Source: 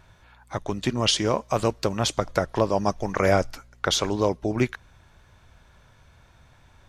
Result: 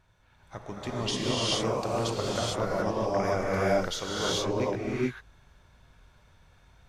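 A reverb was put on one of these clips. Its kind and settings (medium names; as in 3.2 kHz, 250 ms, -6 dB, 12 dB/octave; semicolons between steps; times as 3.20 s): gated-style reverb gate 470 ms rising, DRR -6.5 dB; trim -11.5 dB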